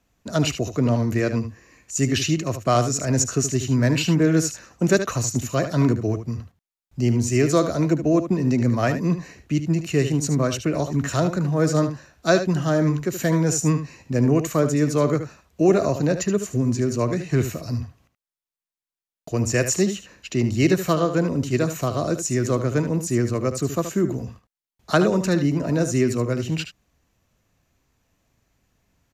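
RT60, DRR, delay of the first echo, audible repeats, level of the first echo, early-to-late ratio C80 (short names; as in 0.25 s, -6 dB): none, none, 75 ms, 1, -10.0 dB, none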